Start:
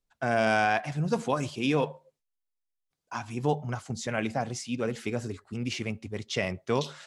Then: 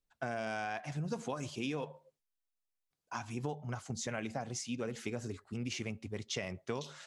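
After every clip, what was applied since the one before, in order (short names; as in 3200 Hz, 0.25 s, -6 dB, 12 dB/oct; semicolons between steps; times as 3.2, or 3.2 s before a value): dynamic EQ 6400 Hz, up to +5 dB, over -57 dBFS, Q 3.7; compressor 6:1, threshold -30 dBFS, peak gain reduction 10.5 dB; gain -4 dB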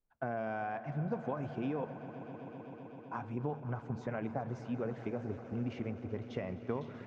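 LPF 1300 Hz 12 dB/oct; swelling echo 0.128 s, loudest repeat 5, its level -17 dB; gain +1.5 dB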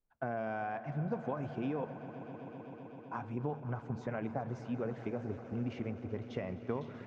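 nothing audible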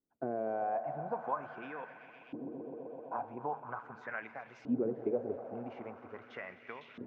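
LFO band-pass saw up 0.43 Hz 280–2800 Hz; gain +9 dB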